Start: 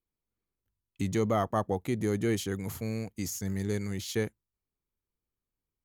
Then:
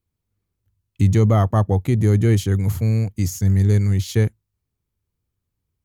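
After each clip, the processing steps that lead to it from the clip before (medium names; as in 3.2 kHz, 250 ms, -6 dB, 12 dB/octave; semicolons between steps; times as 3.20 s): peaking EQ 96 Hz +15 dB 1.5 oct; trim +5.5 dB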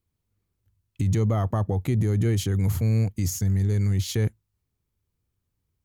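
peak limiter -16 dBFS, peak gain reduction 10.5 dB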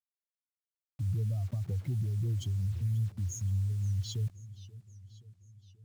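spectral contrast enhancement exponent 2.5; word length cut 8-bit, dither none; modulated delay 529 ms, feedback 60%, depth 186 cents, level -18.5 dB; trim -8.5 dB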